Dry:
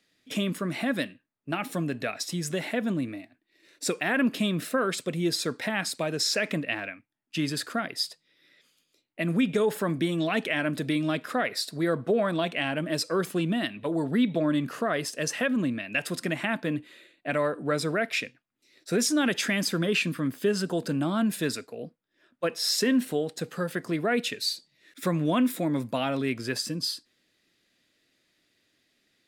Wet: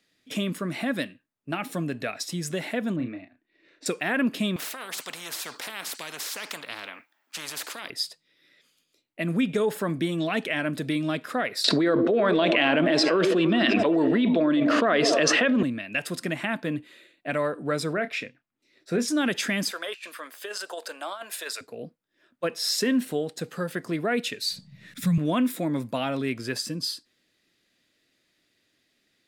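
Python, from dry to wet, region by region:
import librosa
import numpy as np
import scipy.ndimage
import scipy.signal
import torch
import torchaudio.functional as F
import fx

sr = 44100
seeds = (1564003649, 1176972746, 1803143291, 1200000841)

y = fx.chain(x, sr, fx.lowpass(hz=2800.0, slope=12),
    fx.doubler(ms=32.0, db=-8), at=(2.96, 3.86))
y = fx.chain(y, sr, fx.highpass(hz=820.0, slope=12),
    fx.peak_eq(hz=9800.0, db=-14.0, octaves=2.3),
    fx.spectral_comp(ratio=4.0), at=(4.56, 7.9))
y = fx.chain(y, sr, fx.cheby1_bandpass(low_hz=270.0, high_hz=3900.0, order=2),
    fx.echo_stepped(ms=101, hz=300.0, octaves=0.7, feedback_pct=70, wet_db=-8.5),
    fx.env_flatten(amount_pct=100), at=(11.64, 15.63))
y = fx.chain(y, sr, fx.high_shelf(hz=4500.0, db=-11.5),
    fx.doubler(ms=29.0, db=-11.5), at=(17.93, 19.08))
y = fx.chain(y, sr, fx.highpass(hz=580.0, slope=24),
    fx.over_compress(threshold_db=-34.0, ratio=-0.5), at=(19.71, 21.61))
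y = fx.chain(y, sr, fx.low_shelf_res(hz=250.0, db=9.5, q=3.0),
    fx.band_squash(depth_pct=70), at=(24.5, 25.18))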